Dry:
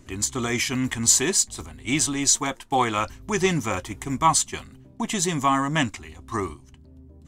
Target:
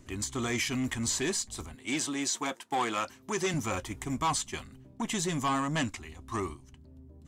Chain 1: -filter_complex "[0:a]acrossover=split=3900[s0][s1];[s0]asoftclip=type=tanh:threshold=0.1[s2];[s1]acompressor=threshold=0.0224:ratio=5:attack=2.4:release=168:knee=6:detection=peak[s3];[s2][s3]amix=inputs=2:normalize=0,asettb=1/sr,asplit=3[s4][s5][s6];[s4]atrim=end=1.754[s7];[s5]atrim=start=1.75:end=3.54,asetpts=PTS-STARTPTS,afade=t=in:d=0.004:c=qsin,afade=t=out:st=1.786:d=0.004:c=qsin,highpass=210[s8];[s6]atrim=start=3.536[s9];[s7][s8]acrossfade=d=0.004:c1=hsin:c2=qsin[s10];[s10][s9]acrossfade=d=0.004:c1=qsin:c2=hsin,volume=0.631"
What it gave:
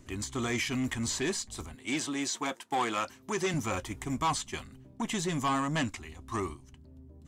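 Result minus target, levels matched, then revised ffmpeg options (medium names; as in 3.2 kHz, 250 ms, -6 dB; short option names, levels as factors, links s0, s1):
compression: peak gain reduction +5 dB
-filter_complex "[0:a]acrossover=split=3900[s0][s1];[s0]asoftclip=type=tanh:threshold=0.1[s2];[s1]acompressor=threshold=0.0473:ratio=5:attack=2.4:release=168:knee=6:detection=peak[s3];[s2][s3]amix=inputs=2:normalize=0,asettb=1/sr,asplit=3[s4][s5][s6];[s4]atrim=end=1.754[s7];[s5]atrim=start=1.75:end=3.54,asetpts=PTS-STARTPTS,afade=t=in:d=0.004:c=qsin,afade=t=out:st=1.786:d=0.004:c=qsin,highpass=210[s8];[s6]atrim=start=3.536[s9];[s7][s8]acrossfade=d=0.004:c1=hsin:c2=qsin[s10];[s10][s9]acrossfade=d=0.004:c1=qsin:c2=hsin,volume=0.631"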